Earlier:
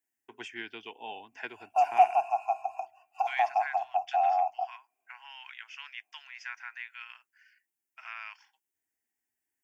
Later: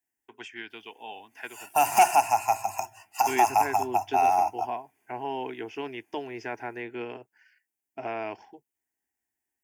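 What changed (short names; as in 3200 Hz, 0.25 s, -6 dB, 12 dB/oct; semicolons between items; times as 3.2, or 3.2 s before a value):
second voice: remove elliptic high-pass 1200 Hz, stop band 70 dB; background: remove vowel filter a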